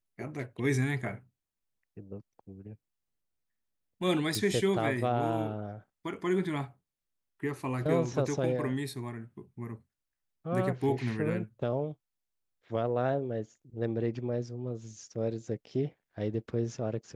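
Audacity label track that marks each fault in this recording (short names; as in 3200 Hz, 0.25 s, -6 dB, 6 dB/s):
4.350000	4.350000	pop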